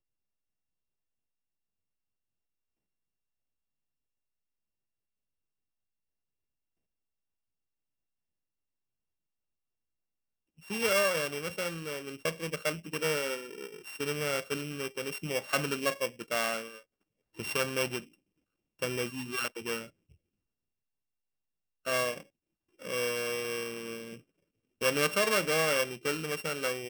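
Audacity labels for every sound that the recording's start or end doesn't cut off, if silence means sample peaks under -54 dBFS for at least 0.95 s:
10.580000	20.120000	sound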